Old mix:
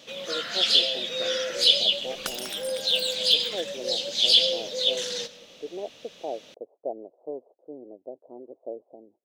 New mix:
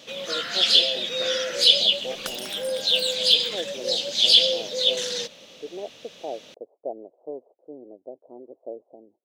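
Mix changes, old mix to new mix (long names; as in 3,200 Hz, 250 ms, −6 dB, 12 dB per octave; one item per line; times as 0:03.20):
first sound +4.5 dB
reverb: off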